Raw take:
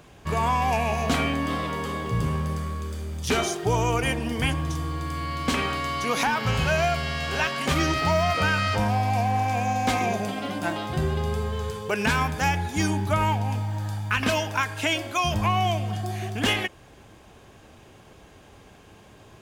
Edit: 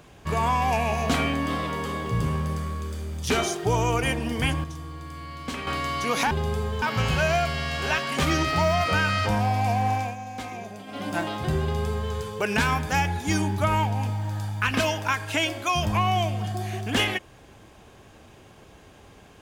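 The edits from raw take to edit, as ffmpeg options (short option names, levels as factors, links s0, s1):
-filter_complex "[0:a]asplit=7[s0][s1][s2][s3][s4][s5][s6];[s0]atrim=end=4.642[s7];[s1]atrim=start=4.638:end=5.672,asetpts=PTS-STARTPTS,volume=0.398[s8];[s2]atrim=start=5.668:end=6.312[s9];[s3]atrim=start=11.108:end=11.622[s10];[s4]atrim=start=6.308:end=9.65,asetpts=PTS-STARTPTS,afade=t=out:st=3.122:d=0.22:silence=0.266073[s11];[s5]atrim=start=9.65:end=10.35,asetpts=PTS-STARTPTS,volume=0.266[s12];[s6]atrim=start=10.35,asetpts=PTS-STARTPTS,afade=t=in:d=0.22:silence=0.266073[s13];[s7][s8]acrossfade=d=0.004:c1=hsin:c2=hsin[s14];[s14][s9]acrossfade=d=0.004:c1=hsin:c2=hsin[s15];[s15][s10]acrossfade=d=0.004:c1=hsin:c2=hsin[s16];[s11][s12][s13]concat=n=3:v=0:a=1[s17];[s16][s17]acrossfade=d=0.004:c1=hsin:c2=hsin"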